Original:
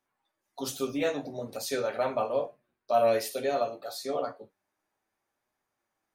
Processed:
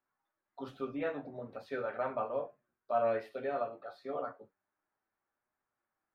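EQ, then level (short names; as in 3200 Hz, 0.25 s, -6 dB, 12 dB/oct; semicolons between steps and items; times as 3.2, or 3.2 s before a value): air absorption 470 m; bell 1400 Hz +7.5 dB 0.96 oct; -6.5 dB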